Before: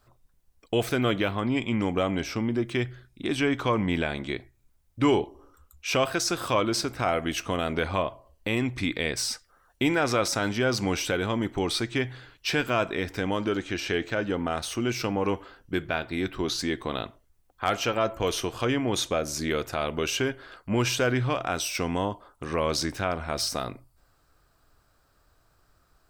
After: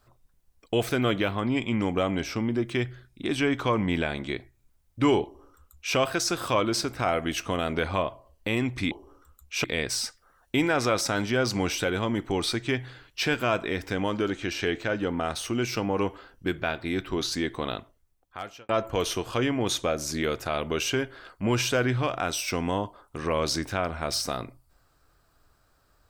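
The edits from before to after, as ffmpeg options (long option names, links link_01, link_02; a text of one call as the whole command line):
ffmpeg -i in.wav -filter_complex "[0:a]asplit=4[link_01][link_02][link_03][link_04];[link_01]atrim=end=8.912[link_05];[link_02]atrim=start=5.228:end=5.962[link_06];[link_03]atrim=start=8.908:end=17.96,asetpts=PTS-STARTPTS,afade=type=out:start_time=8.052:duration=1[link_07];[link_04]atrim=start=17.96,asetpts=PTS-STARTPTS,afade=type=in:duration=0.004:curve=hsin[link_08];[link_05][link_06]acrossfade=duration=0.004:curve1=hsin:curve2=hsin[link_09];[link_07][link_08]concat=n=2:v=0:a=1[link_10];[link_09][link_10]acrossfade=duration=0.004:curve1=hsin:curve2=hsin" out.wav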